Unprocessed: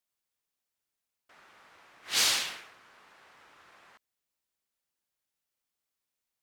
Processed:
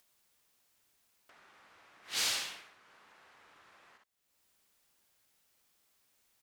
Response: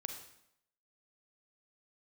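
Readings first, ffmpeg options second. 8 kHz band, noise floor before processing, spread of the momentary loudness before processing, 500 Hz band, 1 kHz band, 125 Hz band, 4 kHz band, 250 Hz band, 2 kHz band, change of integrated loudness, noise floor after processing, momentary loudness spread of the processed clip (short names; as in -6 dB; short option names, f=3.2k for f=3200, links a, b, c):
-6.5 dB, under -85 dBFS, 15 LU, -6.0 dB, -6.5 dB, -6.0 dB, -6.5 dB, -6.5 dB, -6.5 dB, -6.5 dB, -76 dBFS, 14 LU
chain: -af "aecho=1:1:53|63:0.335|0.376,acompressor=mode=upward:threshold=-48dB:ratio=2.5,volume=-7.5dB"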